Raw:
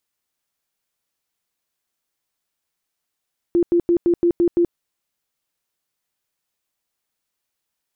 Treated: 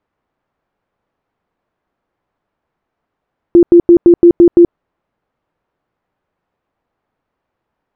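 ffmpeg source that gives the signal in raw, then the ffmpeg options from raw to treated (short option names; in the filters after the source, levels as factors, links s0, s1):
-f lavfi -i "aevalsrc='0.237*sin(2*PI*345*mod(t,0.17))*lt(mod(t,0.17),27/345)':d=1.19:s=44100"
-af "lowpass=1100,alimiter=level_in=7.08:limit=0.891:release=50:level=0:latency=1"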